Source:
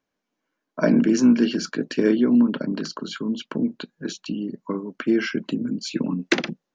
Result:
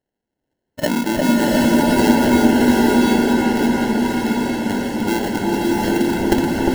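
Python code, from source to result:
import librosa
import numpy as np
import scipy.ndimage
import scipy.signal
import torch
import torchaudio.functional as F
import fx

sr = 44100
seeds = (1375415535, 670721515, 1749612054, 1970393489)

p1 = scipy.signal.sosfilt(scipy.signal.butter(2, 180.0, 'highpass', fs=sr, output='sos'), x)
p2 = fx.peak_eq(p1, sr, hz=4000.0, db=10.0, octaves=0.56)
p3 = fx.level_steps(p2, sr, step_db=13)
p4 = p2 + (p3 * librosa.db_to_amplitude(-2.5))
p5 = fx.sample_hold(p4, sr, seeds[0], rate_hz=1200.0, jitter_pct=0)
p6 = p5 + fx.echo_opening(p5, sr, ms=354, hz=750, octaves=1, feedback_pct=70, wet_db=0, dry=0)
p7 = fx.rev_bloom(p6, sr, seeds[1], attack_ms=740, drr_db=-2.5)
y = p7 * librosa.db_to_amplitude(-3.5)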